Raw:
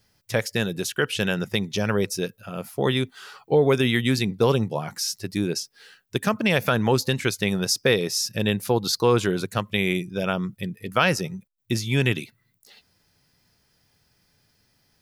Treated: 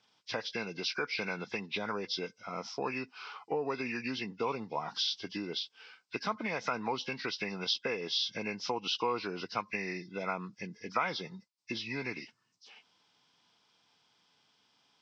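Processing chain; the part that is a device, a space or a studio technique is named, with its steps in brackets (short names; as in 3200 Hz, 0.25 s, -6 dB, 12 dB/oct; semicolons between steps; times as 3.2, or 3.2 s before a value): hearing aid with frequency lowering (nonlinear frequency compression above 1400 Hz 1.5:1; compressor 3:1, threshold -28 dBFS, peak gain reduction 11 dB; speaker cabinet 340–5100 Hz, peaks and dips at 380 Hz -6 dB, 570 Hz -8 dB, 1000 Hz +5 dB, 1800 Hz -8 dB, 3200 Hz -4 dB, 5000 Hz +7 dB)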